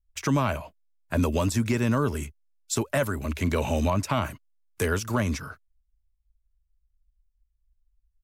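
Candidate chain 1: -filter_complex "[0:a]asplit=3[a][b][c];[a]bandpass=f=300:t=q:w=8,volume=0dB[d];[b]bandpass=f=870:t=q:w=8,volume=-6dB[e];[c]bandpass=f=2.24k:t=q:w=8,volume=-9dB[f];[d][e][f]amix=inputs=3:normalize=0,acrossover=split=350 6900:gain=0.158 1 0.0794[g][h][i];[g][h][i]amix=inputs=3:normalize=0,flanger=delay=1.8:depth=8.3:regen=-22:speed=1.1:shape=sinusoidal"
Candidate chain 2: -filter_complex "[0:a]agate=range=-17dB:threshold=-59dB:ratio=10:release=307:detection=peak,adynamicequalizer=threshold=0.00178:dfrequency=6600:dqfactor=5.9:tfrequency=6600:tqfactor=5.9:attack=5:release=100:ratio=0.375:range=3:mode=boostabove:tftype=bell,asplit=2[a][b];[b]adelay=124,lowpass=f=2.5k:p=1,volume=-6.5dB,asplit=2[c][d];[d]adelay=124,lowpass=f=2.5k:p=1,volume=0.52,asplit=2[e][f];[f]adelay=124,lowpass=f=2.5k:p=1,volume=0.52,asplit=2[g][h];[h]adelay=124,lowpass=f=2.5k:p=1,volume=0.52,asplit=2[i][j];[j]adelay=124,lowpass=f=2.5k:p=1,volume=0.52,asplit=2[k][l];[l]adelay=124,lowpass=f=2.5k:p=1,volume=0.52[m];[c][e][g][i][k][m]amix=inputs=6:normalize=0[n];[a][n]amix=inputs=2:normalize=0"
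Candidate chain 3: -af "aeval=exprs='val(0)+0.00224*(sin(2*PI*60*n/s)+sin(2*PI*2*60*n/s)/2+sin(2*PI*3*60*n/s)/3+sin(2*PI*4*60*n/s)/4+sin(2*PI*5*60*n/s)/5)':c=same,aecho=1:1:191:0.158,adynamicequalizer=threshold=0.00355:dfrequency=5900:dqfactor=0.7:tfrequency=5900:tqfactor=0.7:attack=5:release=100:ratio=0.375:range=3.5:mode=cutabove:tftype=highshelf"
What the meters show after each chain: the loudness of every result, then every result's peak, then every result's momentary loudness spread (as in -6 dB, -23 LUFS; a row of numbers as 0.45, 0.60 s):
-48.5, -26.5, -27.0 LUFS; -29.5, -11.5, -14.0 dBFS; 11, 12, 10 LU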